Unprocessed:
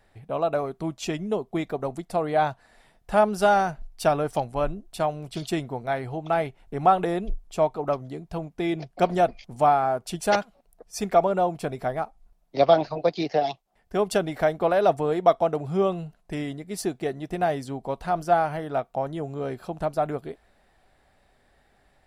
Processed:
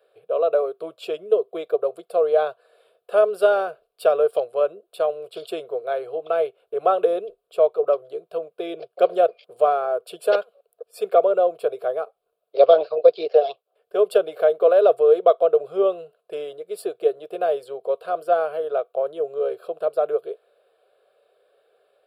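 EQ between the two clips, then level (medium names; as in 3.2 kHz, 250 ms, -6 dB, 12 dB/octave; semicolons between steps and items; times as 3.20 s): resonant high-pass 460 Hz, resonance Q 4.9; static phaser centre 1.3 kHz, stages 8; -1.0 dB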